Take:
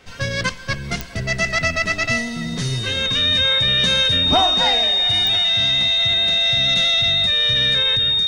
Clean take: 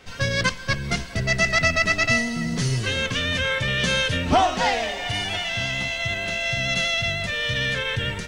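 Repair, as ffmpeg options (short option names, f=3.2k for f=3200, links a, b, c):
-af "adeclick=t=4,bandreject=f=3.7k:w=30,asetnsamples=n=441:p=0,asendcmd='7.97 volume volume 4.5dB',volume=0dB"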